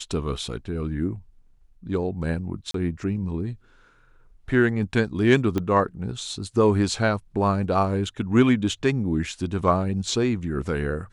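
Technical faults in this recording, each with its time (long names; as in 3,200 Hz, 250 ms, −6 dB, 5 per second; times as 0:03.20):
0:00.59: drop-out 3 ms
0:02.71–0:02.74: drop-out 33 ms
0:05.58: click −13 dBFS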